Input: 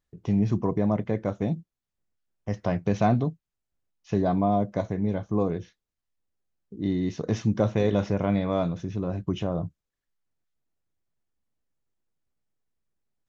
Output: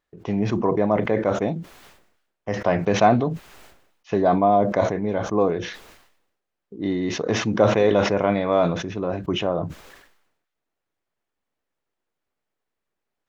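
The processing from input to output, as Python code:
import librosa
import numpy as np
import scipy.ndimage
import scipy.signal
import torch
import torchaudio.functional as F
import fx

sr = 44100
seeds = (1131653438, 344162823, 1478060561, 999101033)

y = fx.bass_treble(x, sr, bass_db=-14, treble_db=-10)
y = fx.sustainer(y, sr, db_per_s=65.0)
y = y * 10.0 ** (8.5 / 20.0)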